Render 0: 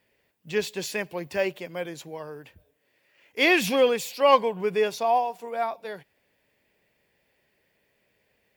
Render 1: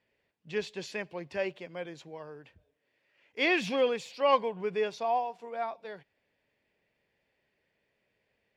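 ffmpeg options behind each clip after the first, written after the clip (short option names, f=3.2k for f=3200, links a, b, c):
-af "lowpass=5.1k,volume=-6.5dB"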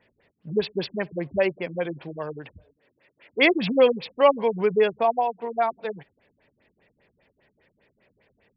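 -filter_complex "[0:a]asplit=2[a][b];[b]acompressor=threshold=-37dB:ratio=6,volume=-2dB[c];[a][c]amix=inputs=2:normalize=0,afftfilt=real='re*lt(b*sr/1024,260*pow(5700/260,0.5+0.5*sin(2*PI*5*pts/sr)))':imag='im*lt(b*sr/1024,260*pow(5700/260,0.5+0.5*sin(2*PI*5*pts/sr)))':win_size=1024:overlap=0.75,volume=8.5dB"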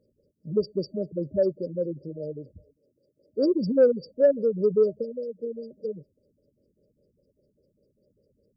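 -af "afftfilt=real='re*(1-between(b*sr/4096,620,4600))':imag='im*(1-between(b*sr/4096,620,4600))':win_size=4096:overlap=0.75,acontrast=55,volume=-6dB"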